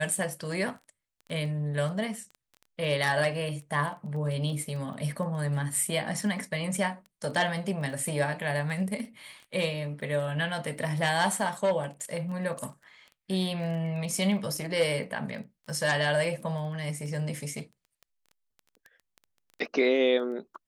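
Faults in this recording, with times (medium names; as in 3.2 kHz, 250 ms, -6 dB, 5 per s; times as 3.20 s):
crackle 12 per s -37 dBFS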